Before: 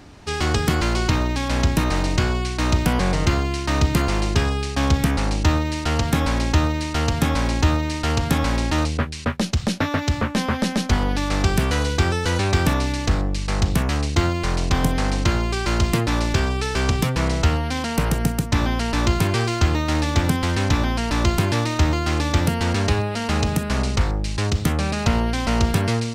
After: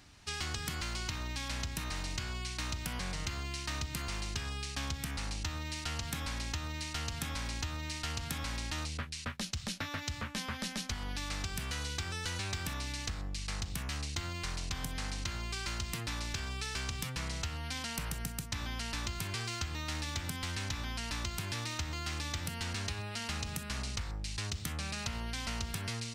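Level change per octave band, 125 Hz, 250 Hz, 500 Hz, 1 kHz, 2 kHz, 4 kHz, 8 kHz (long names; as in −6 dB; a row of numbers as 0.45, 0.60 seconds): −18.5, −21.5, −23.0, −18.0, −13.5, −10.5, −9.0 decibels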